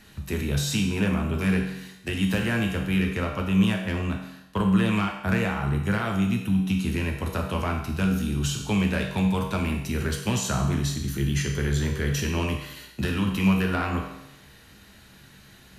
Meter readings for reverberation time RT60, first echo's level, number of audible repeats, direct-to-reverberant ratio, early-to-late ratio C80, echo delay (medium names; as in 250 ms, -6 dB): 0.85 s, no echo, no echo, 1.0 dB, 8.0 dB, no echo